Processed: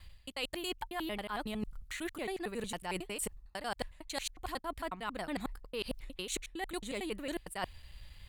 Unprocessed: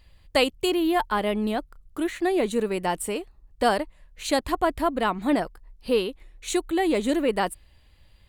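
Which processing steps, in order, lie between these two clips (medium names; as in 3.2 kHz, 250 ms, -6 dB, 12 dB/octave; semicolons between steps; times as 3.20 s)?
slices played last to first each 91 ms, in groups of 3; peaking EQ 360 Hz -9.5 dB 2.8 oct; reverse; compression 12:1, threshold -41 dBFS, peak gain reduction 21 dB; reverse; trim +6 dB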